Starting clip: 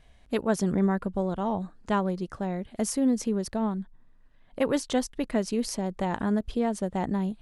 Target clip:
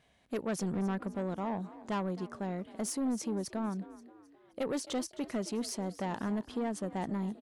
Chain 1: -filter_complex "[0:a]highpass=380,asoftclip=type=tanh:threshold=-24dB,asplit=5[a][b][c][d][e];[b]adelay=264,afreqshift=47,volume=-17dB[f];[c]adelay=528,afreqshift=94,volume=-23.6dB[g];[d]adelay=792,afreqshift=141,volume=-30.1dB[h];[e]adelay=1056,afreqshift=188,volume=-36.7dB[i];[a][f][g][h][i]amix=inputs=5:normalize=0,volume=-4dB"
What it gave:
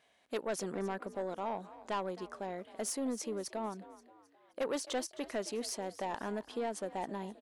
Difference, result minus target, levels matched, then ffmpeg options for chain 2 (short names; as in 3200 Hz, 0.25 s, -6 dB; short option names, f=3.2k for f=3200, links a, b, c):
125 Hz band -8.0 dB
-filter_complex "[0:a]highpass=130,asoftclip=type=tanh:threshold=-24dB,asplit=5[a][b][c][d][e];[b]adelay=264,afreqshift=47,volume=-17dB[f];[c]adelay=528,afreqshift=94,volume=-23.6dB[g];[d]adelay=792,afreqshift=141,volume=-30.1dB[h];[e]adelay=1056,afreqshift=188,volume=-36.7dB[i];[a][f][g][h][i]amix=inputs=5:normalize=0,volume=-4dB"